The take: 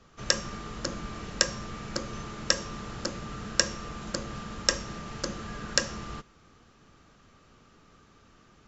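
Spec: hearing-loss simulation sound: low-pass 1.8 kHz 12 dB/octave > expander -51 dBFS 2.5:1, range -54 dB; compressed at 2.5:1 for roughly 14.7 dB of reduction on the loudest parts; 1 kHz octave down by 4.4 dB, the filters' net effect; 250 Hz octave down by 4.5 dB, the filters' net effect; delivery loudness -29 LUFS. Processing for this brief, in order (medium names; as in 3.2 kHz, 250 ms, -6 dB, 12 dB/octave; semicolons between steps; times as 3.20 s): peaking EQ 250 Hz -6 dB; peaking EQ 1 kHz -4.5 dB; compression 2.5:1, threshold -45 dBFS; low-pass 1.8 kHz 12 dB/octave; expander -51 dBFS 2.5:1, range -54 dB; trim +20 dB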